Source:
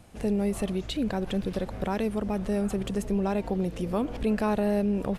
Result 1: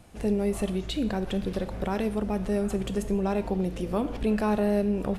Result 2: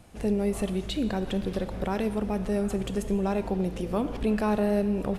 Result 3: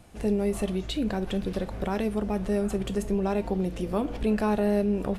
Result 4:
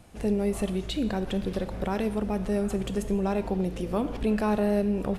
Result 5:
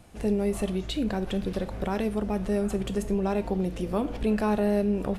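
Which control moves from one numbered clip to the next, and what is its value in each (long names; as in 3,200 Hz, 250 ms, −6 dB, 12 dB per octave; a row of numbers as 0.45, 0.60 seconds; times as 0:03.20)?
reverb whose tail is shaped and stops, gate: 220, 500, 90, 330, 130 milliseconds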